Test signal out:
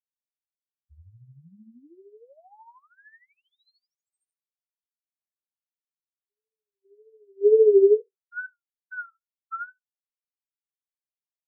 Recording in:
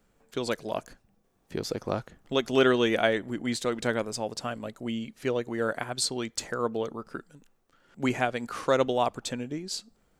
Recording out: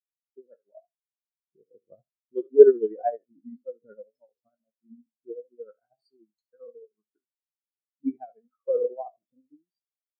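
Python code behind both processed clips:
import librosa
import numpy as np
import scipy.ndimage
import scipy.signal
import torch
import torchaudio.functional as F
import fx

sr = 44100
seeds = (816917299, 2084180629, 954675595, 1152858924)

y = fx.spec_trails(x, sr, decay_s=0.61)
y = y * (1.0 - 0.55 / 2.0 + 0.55 / 2.0 * np.cos(2.0 * np.pi * 13.0 * (np.arange(len(y)) / sr)))
y = fx.wow_flutter(y, sr, seeds[0], rate_hz=2.1, depth_cents=110.0)
y = fx.high_shelf(y, sr, hz=5200.0, db=-5.5)
y = fx.spectral_expand(y, sr, expansion=4.0)
y = y * librosa.db_to_amplitude(8.5)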